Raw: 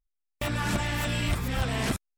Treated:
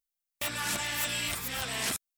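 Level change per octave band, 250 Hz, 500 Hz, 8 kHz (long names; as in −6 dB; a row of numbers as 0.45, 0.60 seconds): −12.0, −7.5, +6.0 decibels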